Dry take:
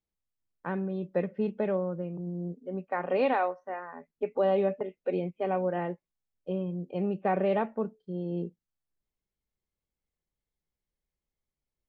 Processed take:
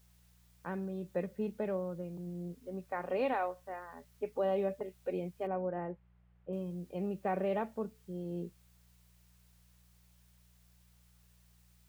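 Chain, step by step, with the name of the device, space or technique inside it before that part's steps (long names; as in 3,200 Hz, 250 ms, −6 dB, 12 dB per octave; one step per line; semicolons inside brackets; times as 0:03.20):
video cassette with head-switching buzz (hum with harmonics 60 Hz, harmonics 3, −59 dBFS −5 dB per octave; white noise bed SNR 32 dB)
0:05.47–0:06.53: Bessel low-pass filter 1,600 Hz, order 4
level −6.5 dB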